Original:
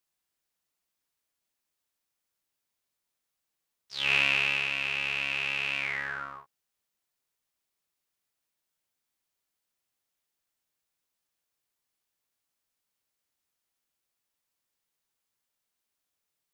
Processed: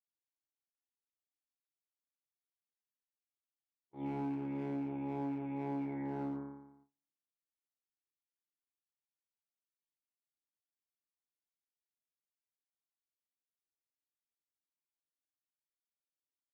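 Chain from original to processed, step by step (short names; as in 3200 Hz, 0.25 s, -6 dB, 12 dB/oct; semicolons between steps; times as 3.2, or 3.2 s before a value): sample leveller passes 2; vocal tract filter u; air absorption 250 m; flutter echo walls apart 4.9 m, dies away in 0.92 s; in parallel at -9.5 dB: wavefolder -39.5 dBFS; on the sum: gate with hold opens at -59 dBFS; HPF 230 Hz 6 dB/oct; compressor, threshold -44 dBFS, peak gain reduction 7.5 dB; flange 0.14 Hz, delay 6 ms, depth 2.5 ms, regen -53%; gain +12 dB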